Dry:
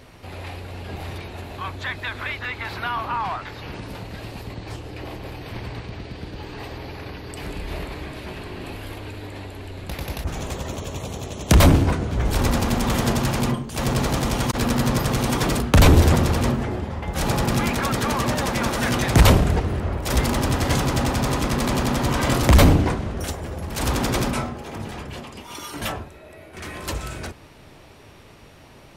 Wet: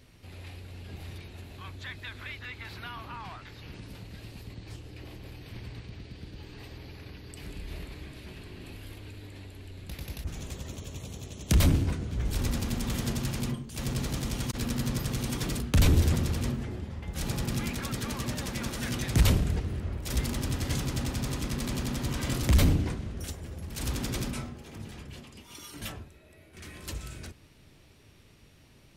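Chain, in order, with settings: bell 830 Hz -10.5 dB 2.2 oct; gain -7.5 dB

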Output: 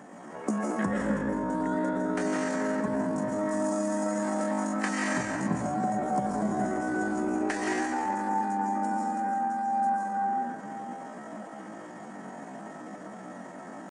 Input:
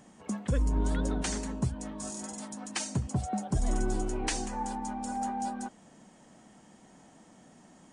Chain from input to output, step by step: compressor 8:1, threshold -34 dBFS, peak gain reduction 11 dB; HPF 230 Hz 12 dB/oct; resonant high shelf 2300 Hz -9 dB, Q 1.5; digital reverb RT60 1.2 s, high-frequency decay 0.6×, pre-delay 45 ms, DRR -4.5 dB; dynamic EQ 1800 Hz, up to +4 dB, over -54 dBFS, Q 3.7; tempo 0.57×; vocal rider within 5 dB 0.5 s; gain +5.5 dB

